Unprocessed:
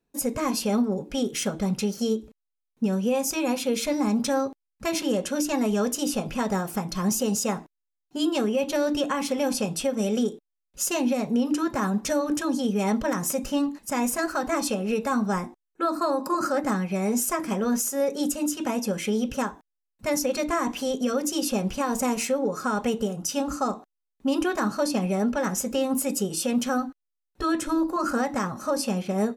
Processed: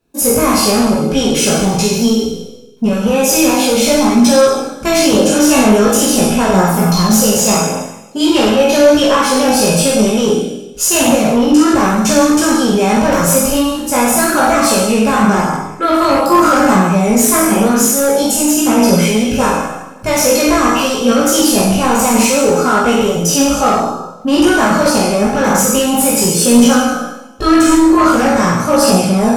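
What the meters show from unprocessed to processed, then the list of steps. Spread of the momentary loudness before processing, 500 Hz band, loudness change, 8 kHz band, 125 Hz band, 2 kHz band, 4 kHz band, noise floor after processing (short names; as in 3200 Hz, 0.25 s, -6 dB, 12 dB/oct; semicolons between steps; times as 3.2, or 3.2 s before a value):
4 LU, +14.5 dB, +15.0 dB, +16.5 dB, +15.0 dB, +16.0 dB, +17.0 dB, -30 dBFS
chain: spectral trails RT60 0.95 s; notch 1900 Hz, Q 8.2; on a send: flutter echo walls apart 8 m, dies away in 0.58 s; on the sum: sine folder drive 6 dB, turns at -8 dBFS; chorus voices 2, 0.45 Hz, delay 18 ms, depth 1.5 ms; gain +5 dB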